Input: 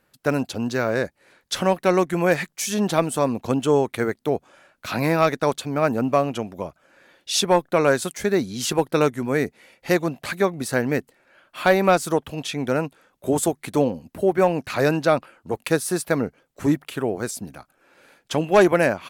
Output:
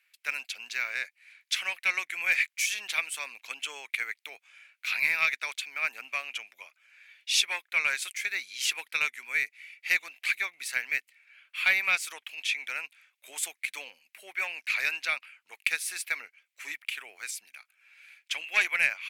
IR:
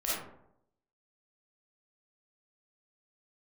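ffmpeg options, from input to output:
-af "highpass=f=2300:t=q:w=5.1,aeval=exprs='1.12*(cos(1*acos(clip(val(0)/1.12,-1,1)))-cos(1*PI/2))+0.00708*(cos(8*acos(clip(val(0)/1.12,-1,1)))-cos(8*PI/2))':c=same,volume=0.531"

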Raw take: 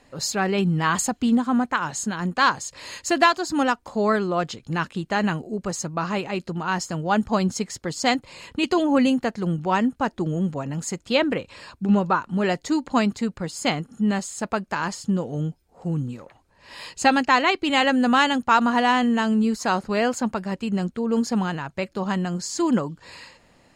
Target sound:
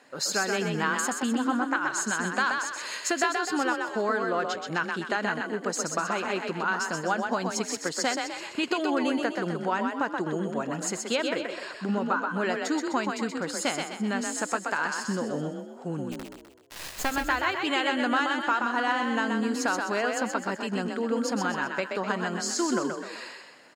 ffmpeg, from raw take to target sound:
-filter_complex "[0:a]highpass=280,equalizer=f=1500:t=o:w=0.33:g=8.5,acompressor=threshold=0.0562:ratio=4,asplit=3[s0][s1][s2];[s0]afade=t=out:st=16.11:d=0.02[s3];[s1]acrusher=bits=3:dc=4:mix=0:aa=0.000001,afade=t=in:st=16.11:d=0.02,afade=t=out:st=17.1:d=0.02[s4];[s2]afade=t=in:st=17.1:d=0.02[s5];[s3][s4][s5]amix=inputs=3:normalize=0,asplit=7[s6][s7][s8][s9][s10][s11][s12];[s7]adelay=127,afreqshift=31,volume=0.596[s13];[s8]adelay=254,afreqshift=62,volume=0.275[s14];[s9]adelay=381,afreqshift=93,volume=0.126[s15];[s10]adelay=508,afreqshift=124,volume=0.0582[s16];[s11]adelay=635,afreqshift=155,volume=0.0266[s17];[s12]adelay=762,afreqshift=186,volume=0.0123[s18];[s6][s13][s14][s15][s16][s17][s18]amix=inputs=7:normalize=0"

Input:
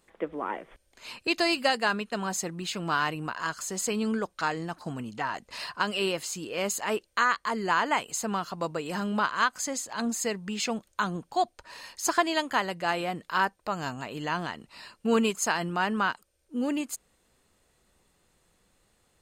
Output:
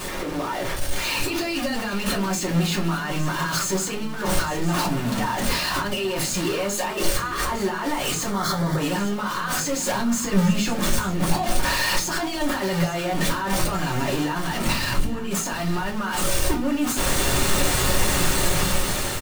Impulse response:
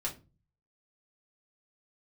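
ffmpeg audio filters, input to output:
-filter_complex "[0:a]aeval=exprs='val(0)+0.5*0.0531*sgn(val(0))':c=same,dynaudnorm=f=490:g=5:m=2.99,asettb=1/sr,asplit=3[s0][s1][s2];[s0]atrim=end=14.724[s3];[s1]atrim=start=14.72:end=15.31,asetpts=PTS-STARTPTS,afade=t=in:d=0.004:c=qsin,afade=t=out:st=0.586:d=0.004:c=qsin,bass=f=250:g=13,treble=f=4000:g=-1[s4];[s2]atrim=start=15.306[s5];[s3][s4]acrossfade=d=0.004:c1=hsin:c2=qsin[s6];[s6][s5]acrossfade=d=0.004:c1=qsin:c2=hsin,alimiter=limit=0.0841:level=0:latency=1:release=45,asettb=1/sr,asplit=3[s7][s8][s9];[s7]atrim=end=8.304[s10];[s8]atrim=start=8.3:end=8.78,asetpts=PTS-STARTPTS,afade=t=in:d=0.004:c=qsin,afade=t=out:st=0.476:d=0.004:c=qsin,asuperstop=centerf=2700:order=4:qfactor=2.6[s11];[s9]atrim=start=8.776[s12];[s10][s11]acrossfade=d=0.004:c1=hsin:c2=qsin[s13];[s13][s12]acrossfade=d=0.004:c1=qsin:c2=hsin,asettb=1/sr,asplit=3[s14][s15][s16];[s14]atrim=end=9.944[s17];[s15]atrim=start=9.94:end=10.73,asetpts=PTS-STARTPTS,afade=t=in:d=0.004:c=qsin,afade=t=out:st=0.786:d=0.004:c=qsin,lowshelf=f=190:g=10.5[s18];[s16]atrim=start=10.726[s19];[s17][s18]acrossfade=d=0.004:c1=hsin:c2=qsin[s20];[s20][s19]acrossfade=d=0.004:c1=qsin:c2=hsin,aecho=1:1:858:0.211[s21];[1:a]atrim=start_sample=2205[s22];[s21][s22]afir=irnorm=-1:irlink=0,volume=0.841"

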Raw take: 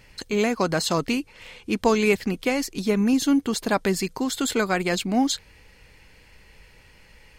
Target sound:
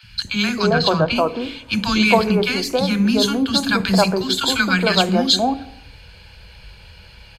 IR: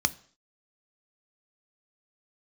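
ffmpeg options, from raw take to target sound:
-filter_complex "[0:a]acrossover=split=260|1200[s0][s1][s2];[s0]adelay=30[s3];[s1]adelay=270[s4];[s3][s4][s2]amix=inputs=3:normalize=0,asplit=3[s5][s6][s7];[s5]afade=t=out:st=0.69:d=0.02[s8];[s6]adynamicsmooth=sensitivity=1:basefreq=2600,afade=t=in:st=0.69:d=0.02,afade=t=out:st=1.14:d=0.02[s9];[s7]afade=t=in:st=1.14:d=0.02[s10];[s8][s9][s10]amix=inputs=3:normalize=0,asplit=2[s11][s12];[1:a]atrim=start_sample=2205,asetrate=29988,aresample=44100[s13];[s12][s13]afir=irnorm=-1:irlink=0,volume=1[s14];[s11][s14]amix=inputs=2:normalize=0,volume=0.75"

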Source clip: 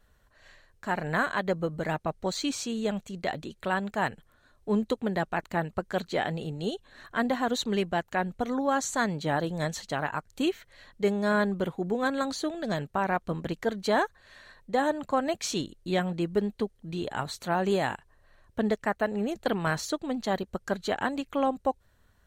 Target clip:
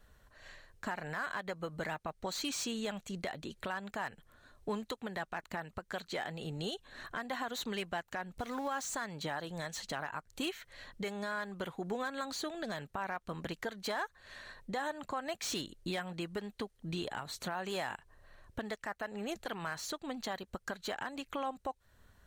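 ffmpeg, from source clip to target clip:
-filter_complex "[0:a]asettb=1/sr,asplit=3[s0][s1][s2];[s0]atrim=end=8.374[s3];[s1]atrim=start=8.37:end=8.94,asetpts=PTS-STARTPTS,afade=t=in:d=0.004:c=qsin,afade=t=out:st=0.566:d=0.004:c=qsin,aeval=exprs='val(0)+0.5*0.0075*sgn(val(0))':c=same[s4];[s2]atrim=start=8.936[s5];[s3][s4]acrossfade=d=0.004:c1=hsin:c2=qsin[s6];[s6][s5]acrossfade=d=0.004:c1=qsin:c2=hsin,acrossover=split=790|1800[s7][s8][s9];[s7]acompressor=threshold=0.0126:ratio=6[s10];[s9]volume=59.6,asoftclip=hard,volume=0.0168[s11];[s10][s8][s11]amix=inputs=3:normalize=0,alimiter=level_in=1.68:limit=0.0631:level=0:latency=1:release=306,volume=0.596,volume=1.19"

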